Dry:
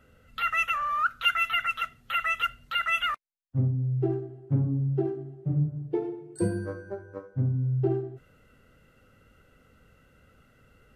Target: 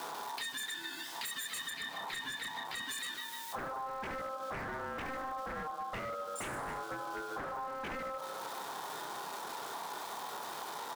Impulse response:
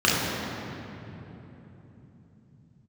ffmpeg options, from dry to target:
-filter_complex "[0:a]aeval=exprs='val(0)+0.5*0.0141*sgn(val(0))':c=same,asuperstop=centerf=1300:order=20:qfactor=0.94,asplit=2[s0][s1];[s1]adelay=29,volume=0.531[s2];[s0][s2]amix=inputs=2:normalize=0,aecho=1:1:152|304|456|608|760:0.282|0.127|0.0571|0.0257|0.0116,aeval=exprs='0.0376*(abs(mod(val(0)/0.0376+3,4)-2)-1)':c=same,aeval=exprs='val(0)*sin(2*PI*920*n/s)':c=same,asettb=1/sr,asplit=3[s3][s4][s5];[s3]atrim=end=1.704[s6];[s4]atrim=start=1.7:end=2.89,asetpts=PTS-STARTPTS,afade=t=in:d=0.004:c=qsin,afade=t=out:st=1.186:d=0.004:c=qsin,bass=f=250:g=5,treble=f=4000:g=-7[s7];[s5]atrim=start=2.886[s8];[s6][s7]acrossfade=d=0.004:c1=hsin:c2=qsin[s9];[s9][s8]acrossfade=d=0.004:c1=qsin:c2=hsin,acompressor=threshold=0.00891:ratio=6,volume=1.58"

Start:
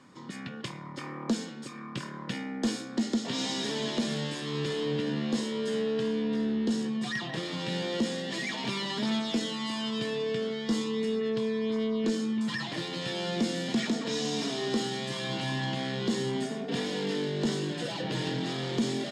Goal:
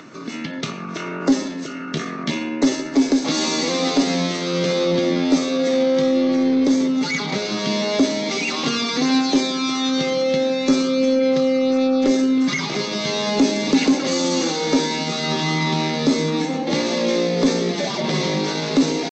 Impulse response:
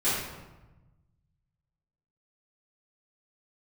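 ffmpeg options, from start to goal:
-filter_complex "[0:a]acompressor=mode=upward:threshold=0.00398:ratio=2.5,asetrate=52444,aresample=44100,atempo=0.840896,acontrast=49,asplit=2[s0][s1];[1:a]atrim=start_sample=2205[s2];[s1][s2]afir=irnorm=-1:irlink=0,volume=0.0631[s3];[s0][s3]amix=inputs=2:normalize=0,volume=1.68" -ar 16000 -c:a aac -b:a 32k

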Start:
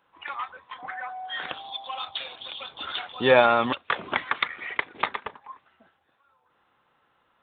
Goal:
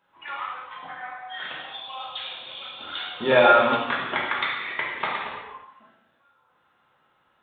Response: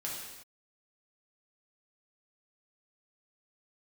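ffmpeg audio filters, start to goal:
-filter_complex "[0:a]asettb=1/sr,asplit=3[s0][s1][s2];[s0]atrim=end=0.884[s3];[s1]atrim=start=0.88:end=3.32,asetpts=PTS-STARTPTS,afade=t=in:d=0.004:c=qsin,afade=t=out:st=2.436:d=0.004:c=qsin,acrossover=split=1000[s4][s5];[s4]aeval=exprs='val(0)*(1-0.5/2+0.5/2*cos(2*PI*2.6*n/s))':c=same[s6];[s5]aeval=exprs='val(0)*(1-0.5/2-0.5/2*cos(2*PI*2.6*n/s))':c=same[s7];[s6][s7]amix=inputs=2:normalize=0[s8];[s2]atrim=start=3.316[s9];[s3][s8]acrossfade=d=0.004:c1=hsin:c2=qsin[s10];[s10][s9]acrossfade=d=0.004:c1=qsin:c2=hsin[s11];[1:a]atrim=start_sample=2205[s12];[s11][s12]afir=irnorm=-1:irlink=0"

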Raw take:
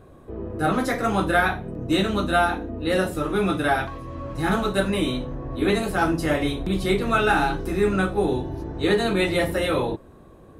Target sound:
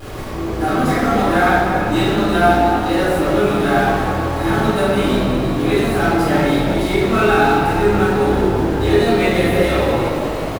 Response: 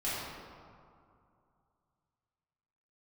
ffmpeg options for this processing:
-filter_complex "[0:a]aeval=exprs='val(0)+0.5*0.0531*sgn(val(0))':c=same,asplit=8[s0][s1][s2][s3][s4][s5][s6][s7];[s1]adelay=339,afreqshift=52,volume=0.282[s8];[s2]adelay=678,afreqshift=104,volume=0.17[s9];[s3]adelay=1017,afreqshift=156,volume=0.101[s10];[s4]adelay=1356,afreqshift=208,volume=0.061[s11];[s5]adelay=1695,afreqshift=260,volume=0.0367[s12];[s6]adelay=2034,afreqshift=312,volume=0.0219[s13];[s7]adelay=2373,afreqshift=364,volume=0.0132[s14];[s0][s8][s9][s10][s11][s12][s13][s14]amix=inputs=8:normalize=0[s15];[1:a]atrim=start_sample=2205[s16];[s15][s16]afir=irnorm=-1:irlink=0,volume=0.708"

